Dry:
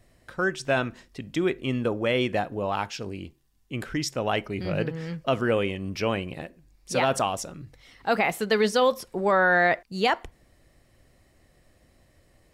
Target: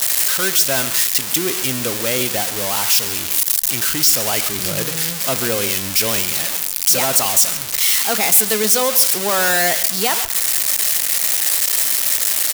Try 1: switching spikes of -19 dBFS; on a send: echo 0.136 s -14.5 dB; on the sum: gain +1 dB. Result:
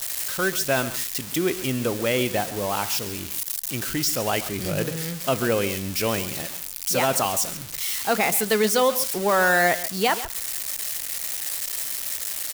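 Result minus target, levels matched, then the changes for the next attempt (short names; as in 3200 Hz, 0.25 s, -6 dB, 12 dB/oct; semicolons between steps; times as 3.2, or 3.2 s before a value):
switching spikes: distortion -12 dB
change: switching spikes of -7 dBFS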